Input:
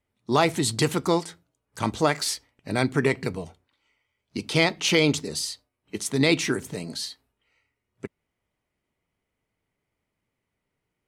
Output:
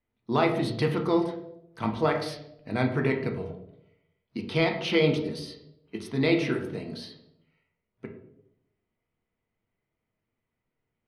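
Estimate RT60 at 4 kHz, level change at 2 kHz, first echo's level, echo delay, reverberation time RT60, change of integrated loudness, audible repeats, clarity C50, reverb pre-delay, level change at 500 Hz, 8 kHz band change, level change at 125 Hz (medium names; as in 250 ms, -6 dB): 0.55 s, -5.0 dB, no echo, no echo, 0.80 s, -2.5 dB, no echo, 8.0 dB, 3 ms, -1.0 dB, -20.5 dB, -1.5 dB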